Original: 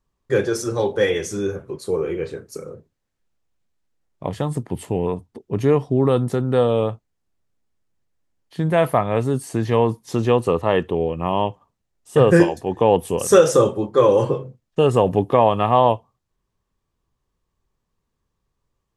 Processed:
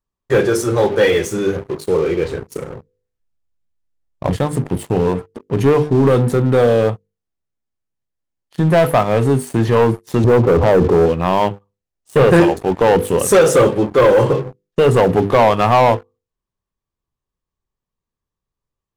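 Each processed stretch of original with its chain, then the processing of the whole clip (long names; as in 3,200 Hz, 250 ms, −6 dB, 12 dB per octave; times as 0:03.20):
0:02.25–0:04.36: low-shelf EQ 120 Hz +11.5 dB + mains-hum notches 50/100/150/200/250/300/350/400/450/500 Hz
0:10.24–0:11.06: low-pass filter 1,100 Hz 24 dB per octave + envelope flattener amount 70%
whole clip: mains-hum notches 50/100/150/200/250/300/350/400/450/500 Hz; dynamic equaliser 5,600 Hz, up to −7 dB, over −48 dBFS, Q 1.6; leveller curve on the samples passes 3; level −3 dB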